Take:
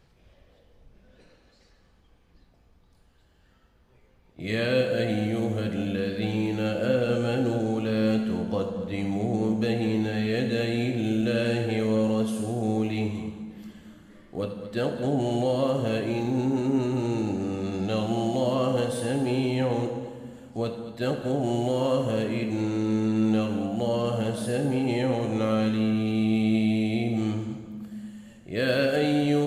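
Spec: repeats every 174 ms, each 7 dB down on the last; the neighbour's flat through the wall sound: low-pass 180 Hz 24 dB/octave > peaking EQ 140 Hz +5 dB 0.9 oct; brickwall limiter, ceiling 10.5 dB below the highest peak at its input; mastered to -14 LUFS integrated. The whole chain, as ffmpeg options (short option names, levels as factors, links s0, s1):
-af "alimiter=limit=0.0708:level=0:latency=1,lowpass=f=180:w=0.5412,lowpass=f=180:w=1.3066,equalizer=f=140:t=o:w=0.9:g=5,aecho=1:1:174|348|522|696|870:0.447|0.201|0.0905|0.0407|0.0183,volume=10"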